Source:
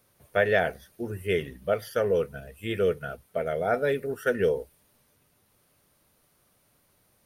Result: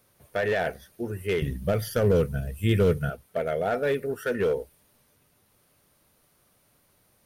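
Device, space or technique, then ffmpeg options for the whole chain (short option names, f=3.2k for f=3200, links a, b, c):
limiter into clipper: -filter_complex "[0:a]alimiter=limit=-17.5dB:level=0:latency=1:release=12,asoftclip=type=hard:threshold=-21dB,asettb=1/sr,asplit=3[a][b][c];[a]atrim=end=1.424[d];[b]atrim=start=1.42:end=3.1,asetpts=PTS-STARTPTS,afade=t=in:d=0.004:c=qsin,afade=t=out:st=1.676:d=0.004:c=qsin,bass=f=250:g=14,treble=f=4k:g=6[e];[c]atrim=start=3.096[f];[d][e]acrossfade=d=0.004:c1=hsin:c2=qsin[g];[g][f]acrossfade=d=0.004:c1=qsin:c2=hsin,volume=1.5dB"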